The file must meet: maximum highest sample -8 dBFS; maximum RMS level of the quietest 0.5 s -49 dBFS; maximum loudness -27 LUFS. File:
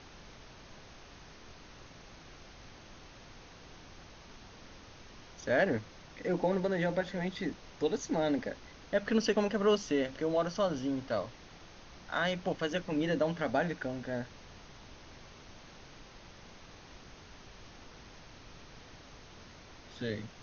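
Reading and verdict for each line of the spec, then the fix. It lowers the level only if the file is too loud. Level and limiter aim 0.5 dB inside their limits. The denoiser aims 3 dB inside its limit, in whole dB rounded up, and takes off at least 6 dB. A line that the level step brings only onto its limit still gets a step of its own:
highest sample -16.5 dBFS: pass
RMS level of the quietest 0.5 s -53 dBFS: pass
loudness -33.0 LUFS: pass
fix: none needed

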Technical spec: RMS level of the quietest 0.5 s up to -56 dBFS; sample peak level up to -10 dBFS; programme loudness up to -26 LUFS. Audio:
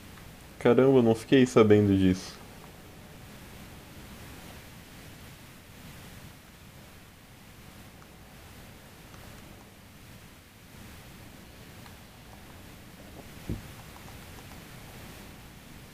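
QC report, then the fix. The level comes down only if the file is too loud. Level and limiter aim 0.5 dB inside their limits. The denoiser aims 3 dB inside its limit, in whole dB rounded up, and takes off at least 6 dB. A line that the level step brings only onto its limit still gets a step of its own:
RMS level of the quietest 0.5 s -51 dBFS: fail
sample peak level -7.5 dBFS: fail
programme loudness -23.5 LUFS: fail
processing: noise reduction 6 dB, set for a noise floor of -51 dBFS; trim -3 dB

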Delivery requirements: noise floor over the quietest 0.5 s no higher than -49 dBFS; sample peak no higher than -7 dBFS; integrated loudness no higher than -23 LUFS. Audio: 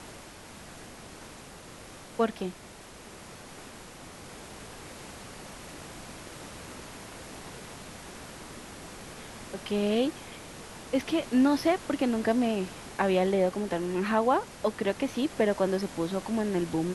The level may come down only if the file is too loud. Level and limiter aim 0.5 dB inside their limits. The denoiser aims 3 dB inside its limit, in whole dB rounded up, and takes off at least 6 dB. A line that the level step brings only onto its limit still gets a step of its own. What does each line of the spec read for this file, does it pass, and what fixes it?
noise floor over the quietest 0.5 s -48 dBFS: fail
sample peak -12.5 dBFS: pass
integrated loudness -28.5 LUFS: pass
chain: noise reduction 6 dB, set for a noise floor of -48 dBFS

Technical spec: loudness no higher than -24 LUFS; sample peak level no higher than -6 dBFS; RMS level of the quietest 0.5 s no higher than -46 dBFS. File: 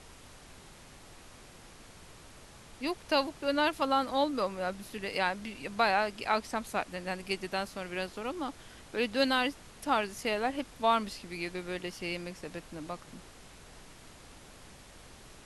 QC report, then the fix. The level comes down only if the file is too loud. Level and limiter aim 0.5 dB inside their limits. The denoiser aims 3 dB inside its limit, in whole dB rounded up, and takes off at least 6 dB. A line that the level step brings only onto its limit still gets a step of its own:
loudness -32.5 LUFS: pass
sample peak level -14.0 dBFS: pass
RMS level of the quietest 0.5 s -52 dBFS: pass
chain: none needed

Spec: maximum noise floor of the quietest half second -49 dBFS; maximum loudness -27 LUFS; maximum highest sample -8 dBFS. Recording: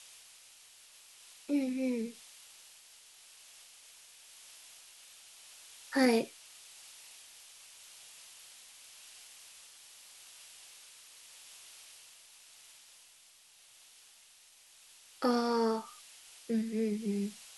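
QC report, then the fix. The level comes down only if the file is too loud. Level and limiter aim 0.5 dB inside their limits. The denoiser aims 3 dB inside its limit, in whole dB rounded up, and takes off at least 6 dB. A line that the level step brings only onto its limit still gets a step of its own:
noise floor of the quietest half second -61 dBFS: pass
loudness -33.0 LUFS: pass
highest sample -15.5 dBFS: pass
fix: none needed

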